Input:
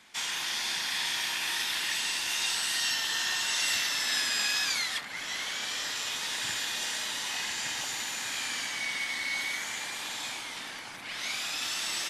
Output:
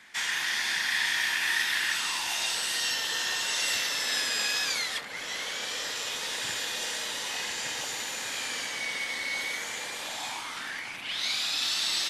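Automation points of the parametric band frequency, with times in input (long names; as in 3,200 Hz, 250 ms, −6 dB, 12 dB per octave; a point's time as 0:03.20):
parametric band +10 dB 0.52 octaves
0:01.81 1,800 Hz
0:02.61 490 Hz
0:09.96 490 Hz
0:11.25 4,100 Hz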